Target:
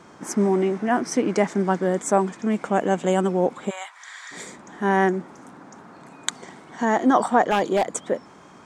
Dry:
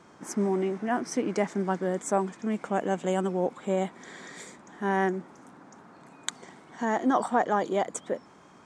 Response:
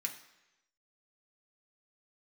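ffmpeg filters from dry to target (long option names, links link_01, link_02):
-filter_complex "[0:a]asplit=3[link_01][link_02][link_03];[link_01]afade=type=out:start_time=3.69:duration=0.02[link_04];[link_02]highpass=frequency=990:width=0.5412,highpass=frequency=990:width=1.3066,afade=type=in:start_time=3.69:duration=0.02,afade=type=out:start_time=4.31:duration=0.02[link_05];[link_03]afade=type=in:start_time=4.31:duration=0.02[link_06];[link_04][link_05][link_06]amix=inputs=3:normalize=0,asettb=1/sr,asplit=3[link_07][link_08][link_09];[link_07]atrim=end=7.444[link_10];[link_08]atrim=start=7.44:end=7.96,asetpts=PTS-STARTPTS,afade=type=in:duration=0.004:curve=qsin,afade=type=out:start_time=0.516:duration=0.004:curve=qsin,aeval=exprs='0.112*(abs(mod(val(0)/0.112+3,4)-2)-1)':channel_layout=same[link_11];[link_09]atrim=start=7.956[link_12];[link_10][link_11]acrossfade=duration=0.004:curve1=hsin:curve2=qsin[link_13];[link_13][link_12]acrossfade=duration=0.004:curve1=qsin:curve2=hsin,volume=6.5dB"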